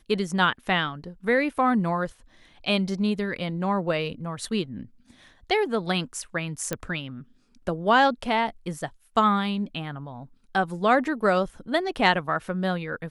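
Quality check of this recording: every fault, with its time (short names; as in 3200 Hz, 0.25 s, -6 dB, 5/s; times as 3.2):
6.73 pop -12 dBFS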